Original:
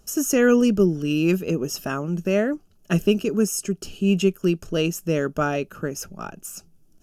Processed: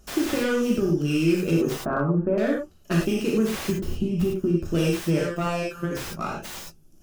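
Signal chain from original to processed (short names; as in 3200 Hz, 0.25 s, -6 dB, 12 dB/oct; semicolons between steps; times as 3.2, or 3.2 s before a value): tracing distortion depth 0.48 ms; 1.73–2.38 LPF 1400 Hz 24 dB/oct; 3.69–4.65 tilt shelf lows +8.5 dB, about 640 Hz; limiter -13 dBFS, peak gain reduction 9 dB; compressor 10:1, threshold -22 dBFS, peak gain reduction 6.5 dB; 5.19–5.91 robotiser 172 Hz; non-linear reverb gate 0.13 s flat, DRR -3.5 dB; slew limiter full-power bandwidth 130 Hz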